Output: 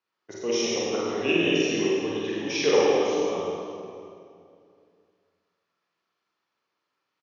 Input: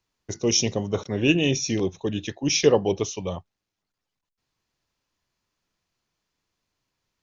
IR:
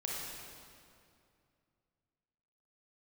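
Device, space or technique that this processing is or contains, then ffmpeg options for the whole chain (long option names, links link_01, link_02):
station announcement: -filter_complex "[0:a]highpass=310,lowpass=4000,equalizer=frequency=1300:width_type=o:width=0.57:gain=6.5,aecho=1:1:46.65|99.13:0.794|0.251[link_01];[1:a]atrim=start_sample=2205[link_02];[link_01][link_02]afir=irnorm=-1:irlink=0,volume=-3.5dB"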